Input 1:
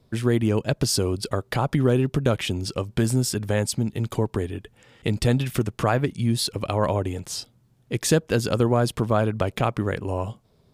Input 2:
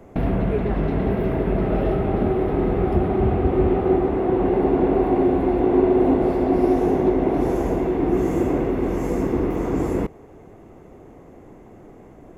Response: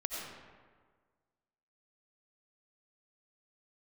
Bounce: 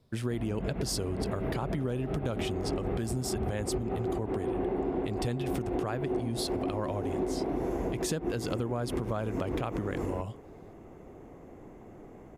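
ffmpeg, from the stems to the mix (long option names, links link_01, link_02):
-filter_complex "[0:a]volume=-6dB,asplit=2[link_01][link_02];[1:a]adelay=150,volume=-4.5dB[link_03];[link_02]apad=whole_len=552486[link_04];[link_03][link_04]sidechaincompress=threshold=-37dB:ratio=8:attack=38:release=104[link_05];[link_01][link_05]amix=inputs=2:normalize=0,acompressor=threshold=-28dB:ratio=6"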